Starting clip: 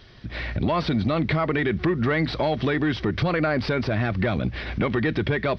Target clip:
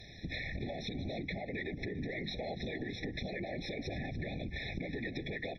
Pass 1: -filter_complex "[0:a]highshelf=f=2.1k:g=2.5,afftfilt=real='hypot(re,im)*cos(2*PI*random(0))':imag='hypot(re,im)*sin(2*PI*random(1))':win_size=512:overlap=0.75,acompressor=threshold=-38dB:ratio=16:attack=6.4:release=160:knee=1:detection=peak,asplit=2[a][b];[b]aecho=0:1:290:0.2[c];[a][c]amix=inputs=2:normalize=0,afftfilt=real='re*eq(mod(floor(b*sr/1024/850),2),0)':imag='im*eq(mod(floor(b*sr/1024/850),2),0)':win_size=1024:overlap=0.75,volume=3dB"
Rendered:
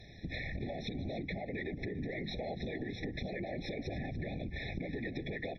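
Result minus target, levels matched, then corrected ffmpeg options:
4000 Hz band -3.0 dB
-filter_complex "[0:a]highshelf=f=2.1k:g=9.5,afftfilt=real='hypot(re,im)*cos(2*PI*random(0))':imag='hypot(re,im)*sin(2*PI*random(1))':win_size=512:overlap=0.75,acompressor=threshold=-38dB:ratio=16:attack=6.4:release=160:knee=1:detection=peak,asplit=2[a][b];[b]aecho=0:1:290:0.2[c];[a][c]amix=inputs=2:normalize=0,afftfilt=real='re*eq(mod(floor(b*sr/1024/850),2),0)':imag='im*eq(mod(floor(b*sr/1024/850),2),0)':win_size=1024:overlap=0.75,volume=3dB"

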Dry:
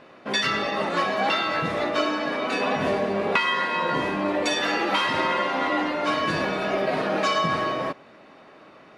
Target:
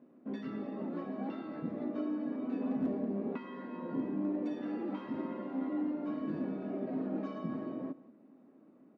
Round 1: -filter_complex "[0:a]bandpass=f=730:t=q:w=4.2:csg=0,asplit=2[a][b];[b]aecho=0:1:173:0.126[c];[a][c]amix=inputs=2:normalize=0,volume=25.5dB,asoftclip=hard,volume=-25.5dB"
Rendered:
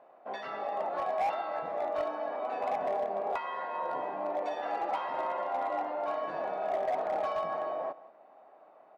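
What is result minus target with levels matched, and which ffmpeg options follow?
250 Hz band -19.0 dB
-filter_complex "[0:a]bandpass=f=250:t=q:w=4.2:csg=0,asplit=2[a][b];[b]aecho=0:1:173:0.126[c];[a][c]amix=inputs=2:normalize=0,volume=25.5dB,asoftclip=hard,volume=-25.5dB"

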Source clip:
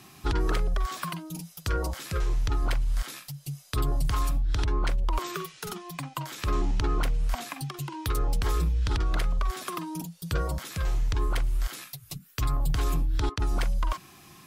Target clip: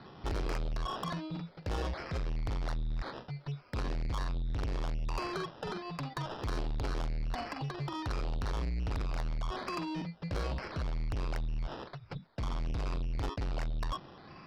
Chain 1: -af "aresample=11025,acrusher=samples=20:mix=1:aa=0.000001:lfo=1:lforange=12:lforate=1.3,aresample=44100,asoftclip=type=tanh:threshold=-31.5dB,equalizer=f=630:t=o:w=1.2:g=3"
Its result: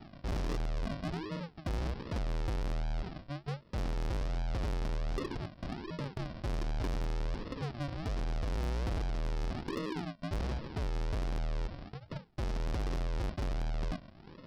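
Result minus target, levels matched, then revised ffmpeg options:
decimation with a swept rate: distortion +7 dB
-af "aresample=11025,acrusher=samples=4:mix=1:aa=0.000001:lfo=1:lforange=2.4:lforate=1.3,aresample=44100,asoftclip=type=tanh:threshold=-31.5dB,equalizer=f=630:t=o:w=1.2:g=3"

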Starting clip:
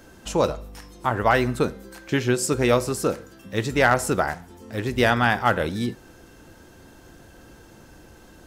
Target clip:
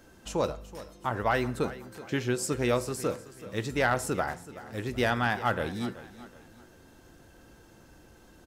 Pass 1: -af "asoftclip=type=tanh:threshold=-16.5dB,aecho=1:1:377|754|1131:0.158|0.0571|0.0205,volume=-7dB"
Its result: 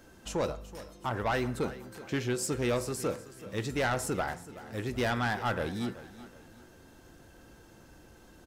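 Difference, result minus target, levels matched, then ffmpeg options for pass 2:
soft clip: distortion +15 dB
-af "asoftclip=type=tanh:threshold=-5dB,aecho=1:1:377|754|1131:0.158|0.0571|0.0205,volume=-7dB"

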